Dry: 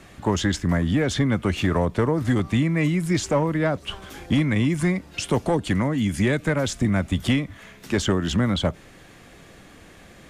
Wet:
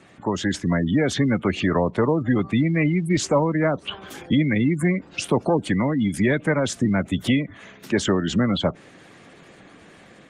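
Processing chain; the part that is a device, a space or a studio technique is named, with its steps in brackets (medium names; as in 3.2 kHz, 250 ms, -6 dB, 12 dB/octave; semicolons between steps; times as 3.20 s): 3.97–4.48 s: dynamic bell 7.7 kHz, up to +4 dB, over -50 dBFS, Q 0.78; noise-suppressed video call (high-pass 140 Hz 12 dB/octave; spectral gate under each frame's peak -25 dB strong; level rider gain up to 4 dB; trim -1.5 dB; Opus 24 kbps 48 kHz)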